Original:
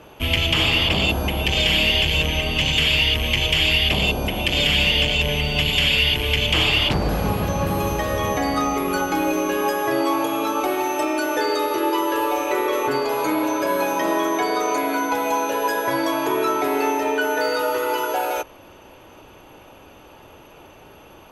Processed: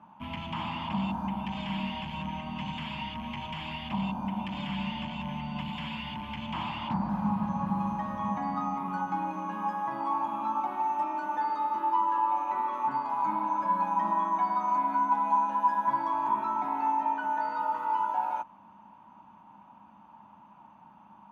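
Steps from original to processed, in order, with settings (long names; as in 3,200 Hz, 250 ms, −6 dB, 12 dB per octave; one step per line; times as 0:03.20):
0:00.81–0:01.26: surface crackle 550 per second −27 dBFS
pair of resonant band-passes 440 Hz, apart 2.2 octaves
level +2 dB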